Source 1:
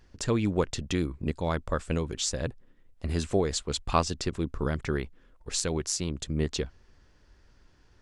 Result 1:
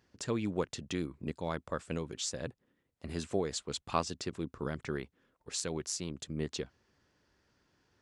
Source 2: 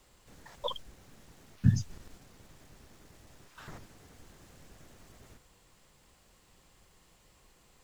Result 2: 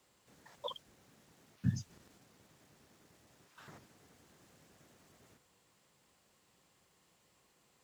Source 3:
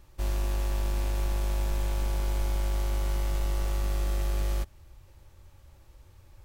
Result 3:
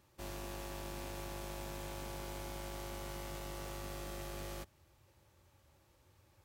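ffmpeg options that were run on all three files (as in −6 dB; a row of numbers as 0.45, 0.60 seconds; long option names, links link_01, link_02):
-af "highpass=120,volume=-6.5dB"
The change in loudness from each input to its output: −7.0, −8.5, −14.0 LU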